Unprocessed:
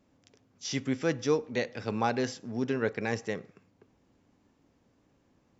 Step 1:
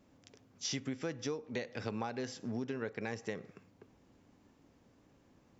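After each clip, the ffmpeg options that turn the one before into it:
-af "acompressor=threshold=-36dB:ratio=16,volume=2dB"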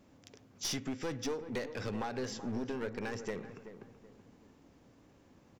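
-filter_complex "[0:a]aeval=exprs='clip(val(0),-1,0.0112)':c=same,asplit=2[a][b];[b]adelay=379,lowpass=f=1.4k:p=1,volume=-11dB,asplit=2[c][d];[d]adelay=379,lowpass=f=1.4k:p=1,volume=0.37,asplit=2[e][f];[f]adelay=379,lowpass=f=1.4k:p=1,volume=0.37,asplit=2[g][h];[h]adelay=379,lowpass=f=1.4k:p=1,volume=0.37[i];[a][c][e][g][i]amix=inputs=5:normalize=0,volume=3.5dB"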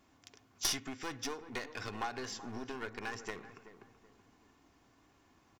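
-af "lowshelf=f=710:t=q:w=1.5:g=-6,aeval=exprs='0.0708*(cos(1*acos(clip(val(0)/0.0708,-1,1)))-cos(1*PI/2))+0.0178*(cos(3*acos(clip(val(0)/0.0708,-1,1)))-cos(3*PI/2))+0.001*(cos(5*acos(clip(val(0)/0.0708,-1,1)))-cos(5*PI/2))':c=same,aecho=1:1:2.8:0.37,volume=9.5dB"

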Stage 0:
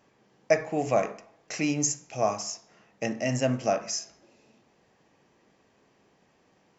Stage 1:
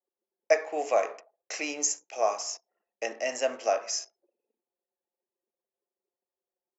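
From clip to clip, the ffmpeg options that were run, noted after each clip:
-af "anlmdn=0.00631,highpass=f=410:w=0.5412,highpass=f=410:w=1.3066"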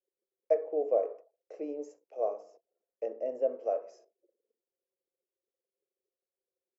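-filter_complex "[0:a]acrossover=split=660[a][b];[a]aeval=exprs='val(0)*(1-0.5/2+0.5/2*cos(2*PI*1.2*n/s))':c=same[c];[b]aeval=exprs='val(0)*(1-0.5/2-0.5/2*cos(2*PI*1.2*n/s))':c=same[d];[c][d]amix=inputs=2:normalize=0,firequalizer=gain_entry='entry(160,0);entry(480,14);entry(810,-5);entry(1800,-17);entry(6500,-27)':delay=0.05:min_phase=1,volume=-7.5dB"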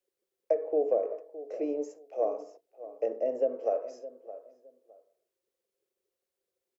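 -filter_complex "[0:a]acrossover=split=340[a][b];[b]acompressor=threshold=-31dB:ratio=10[c];[a][c]amix=inputs=2:normalize=0,asplit=2[d][e];[e]adelay=614,lowpass=f=1.4k:p=1,volume=-14.5dB,asplit=2[f][g];[g]adelay=614,lowpass=f=1.4k:p=1,volume=0.23[h];[d][f][h]amix=inputs=3:normalize=0,volume=6dB"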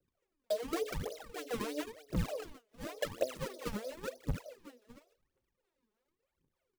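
-af "acompressor=threshold=-35dB:ratio=16,acrusher=samples=37:mix=1:aa=0.000001:lfo=1:lforange=59.2:lforate=3.3,aphaser=in_gain=1:out_gain=1:delay=4.9:decay=0.77:speed=0.93:type=triangular,volume=-2dB"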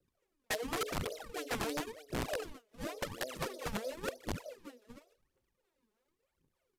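-af "alimiter=level_in=5dB:limit=-24dB:level=0:latency=1:release=120,volume=-5dB,aeval=exprs='(mod(37.6*val(0)+1,2)-1)/37.6':c=same,aresample=32000,aresample=44100,volume=2.5dB"

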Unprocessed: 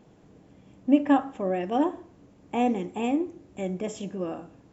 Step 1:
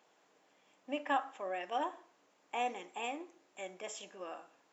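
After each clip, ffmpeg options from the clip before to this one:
-af "highpass=880,volume=-2.5dB"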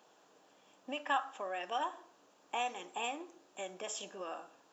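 -filter_complex "[0:a]equalizer=f=2.1k:t=o:w=0.36:g=-10,acrossover=split=910[a][b];[a]acompressor=threshold=-47dB:ratio=6[c];[c][b]amix=inputs=2:normalize=0,volume=5dB"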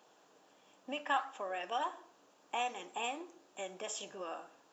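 -af "flanger=delay=2.1:depth=5.3:regen=-90:speed=1.5:shape=sinusoidal,volume=4.5dB"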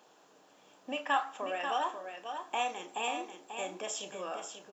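-filter_complex "[0:a]asplit=2[a][b];[b]adelay=32,volume=-11dB[c];[a][c]amix=inputs=2:normalize=0,aecho=1:1:539:0.422,volume=3dB"

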